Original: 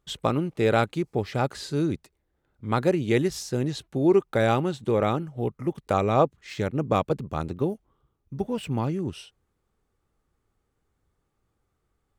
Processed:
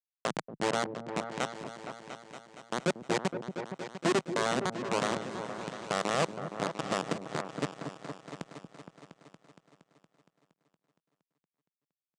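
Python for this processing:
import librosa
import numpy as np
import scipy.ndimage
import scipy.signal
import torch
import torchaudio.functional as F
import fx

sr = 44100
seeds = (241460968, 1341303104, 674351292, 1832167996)

y = fx.cheby_harmonics(x, sr, harmonics=(3, 4, 6, 7), levels_db=(-42, -29, -36, -11), full_scale_db=-7.0)
y = fx.schmitt(y, sr, flips_db=-25.5)
y = scipy.signal.sosfilt(scipy.signal.ellip(3, 1.0, 40, [160.0, 8300.0], 'bandpass', fs=sr, output='sos'), y)
y = fx.echo_opening(y, sr, ms=233, hz=400, octaves=2, feedback_pct=70, wet_db=-6)
y = y * librosa.db_to_amplitude(6.0)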